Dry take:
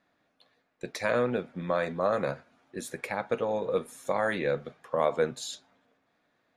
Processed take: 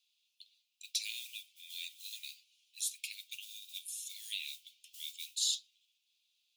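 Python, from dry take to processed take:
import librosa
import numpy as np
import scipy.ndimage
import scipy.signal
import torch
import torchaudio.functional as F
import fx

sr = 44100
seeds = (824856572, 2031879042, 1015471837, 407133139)

y = fx.mod_noise(x, sr, seeds[0], snr_db=31)
y = scipy.signal.sosfilt(scipy.signal.butter(12, 2700.0, 'highpass', fs=sr, output='sos'), y)
y = F.gain(torch.from_numpy(y), 6.5).numpy()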